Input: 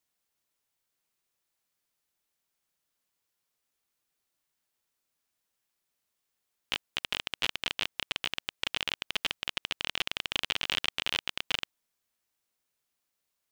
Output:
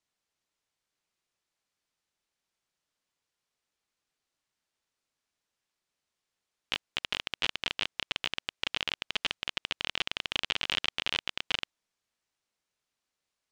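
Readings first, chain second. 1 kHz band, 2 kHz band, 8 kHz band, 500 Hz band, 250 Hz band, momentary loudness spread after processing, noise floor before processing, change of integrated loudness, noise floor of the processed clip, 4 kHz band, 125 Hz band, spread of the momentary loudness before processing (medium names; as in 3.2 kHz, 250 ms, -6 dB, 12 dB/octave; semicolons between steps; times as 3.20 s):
0.0 dB, 0.0 dB, -2.5 dB, 0.0 dB, 0.0 dB, 4 LU, -83 dBFS, 0.0 dB, under -85 dBFS, 0.0 dB, 0.0 dB, 4 LU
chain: low-pass 7.1 kHz 12 dB/octave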